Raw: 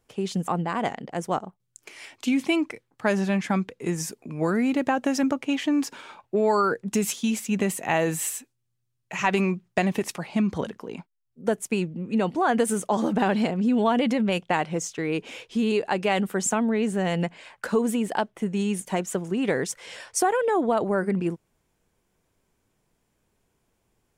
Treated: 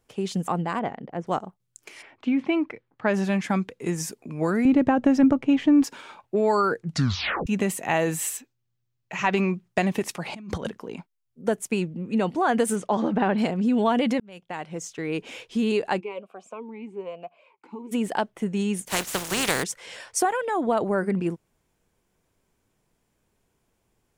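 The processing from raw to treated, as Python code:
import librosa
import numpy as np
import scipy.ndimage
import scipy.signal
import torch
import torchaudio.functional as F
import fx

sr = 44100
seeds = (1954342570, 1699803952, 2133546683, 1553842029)

y = fx.spacing_loss(x, sr, db_at_10k=31, at=(0.79, 1.27))
y = fx.lowpass(y, sr, hz=fx.line((2.01, 1600.0), (3.13, 3200.0)), slope=12, at=(2.01, 3.13), fade=0.02)
y = fx.riaa(y, sr, side='playback', at=(4.65, 5.84))
y = fx.peak_eq(y, sr, hz=10000.0, db=-13.5, octaves=0.66, at=(8.37, 9.54))
y = fx.over_compress(y, sr, threshold_db=-35.0, ratio=-1.0, at=(10.25, 10.67), fade=0.02)
y = fx.lowpass(y, sr, hz=fx.line((12.75, 5700.0), (13.37, 2200.0)), slope=12, at=(12.75, 13.37), fade=0.02)
y = fx.vowel_sweep(y, sr, vowels='a-u', hz=1.1, at=(15.99, 17.91), fade=0.02)
y = fx.spec_flatten(y, sr, power=0.35, at=(18.87, 19.62), fade=0.02)
y = fx.peak_eq(y, sr, hz=430.0, db=-7.5, octaves=0.54, at=(20.25, 20.67))
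y = fx.edit(y, sr, fx.tape_stop(start_s=6.77, length_s=0.7),
    fx.fade_in_span(start_s=14.2, length_s=1.12), tone=tone)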